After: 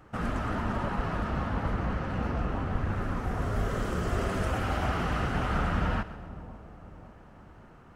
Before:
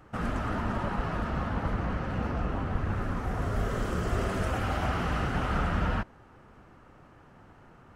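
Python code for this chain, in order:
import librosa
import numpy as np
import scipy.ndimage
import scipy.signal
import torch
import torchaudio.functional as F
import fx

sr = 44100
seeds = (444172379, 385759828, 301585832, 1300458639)

y = fx.echo_split(x, sr, split_hz=910.0, low_ms=549, high_ms=132, feedback_pct=52, wet_db=-15.0)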